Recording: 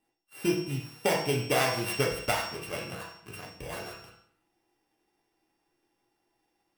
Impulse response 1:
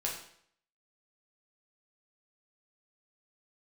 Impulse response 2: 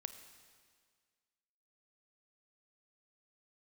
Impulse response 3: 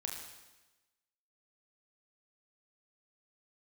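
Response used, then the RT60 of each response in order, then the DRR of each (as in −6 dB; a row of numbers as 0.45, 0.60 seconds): 1; 0.65, 1.8, 1.1 seconds; −3.0, 9.0, −0.5 decibels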